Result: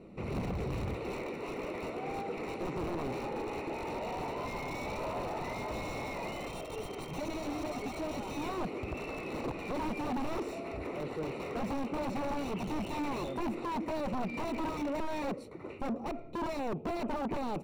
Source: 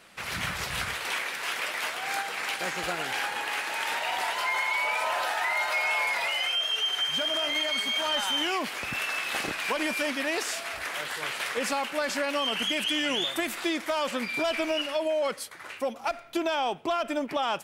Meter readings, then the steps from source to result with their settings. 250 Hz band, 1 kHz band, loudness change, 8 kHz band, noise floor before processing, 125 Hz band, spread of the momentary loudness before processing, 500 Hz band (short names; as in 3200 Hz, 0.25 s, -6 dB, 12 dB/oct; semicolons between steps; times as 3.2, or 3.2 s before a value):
0.0 dB, -7.0 dB, -9.0 dB, -16.5 dB, -43 dBFS, +7.0 dB, 6 LU, -5.0 dB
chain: resonant low shelf 540 Hz +9.5 dB, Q 1.5; limiter -19.5 dBFS, peak gain reduction 11 dB; wrapped overs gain 23.5 dB; running mean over 27 samples; soft clip -32 dBFS, distortion -14 dB; gain +2.5 dB